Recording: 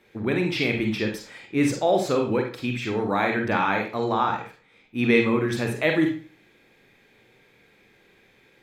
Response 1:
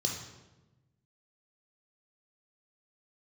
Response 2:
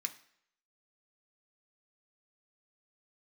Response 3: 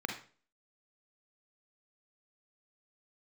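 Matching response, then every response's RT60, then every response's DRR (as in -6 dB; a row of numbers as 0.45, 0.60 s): 3; 1.1 s, not exponential, 0.40 s; 1.0, 4.5, 2.5 dB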